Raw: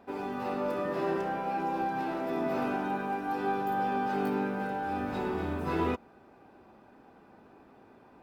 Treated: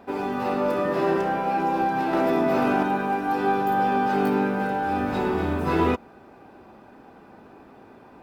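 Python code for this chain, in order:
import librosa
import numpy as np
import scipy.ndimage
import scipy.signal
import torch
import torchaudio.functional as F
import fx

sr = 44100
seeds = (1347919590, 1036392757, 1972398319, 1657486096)

y = fx.env_flatten(x, sr, amount_pct=100, at=(2.13, 2.83))
y = y * 10.0 ** (8.0 / 20.0)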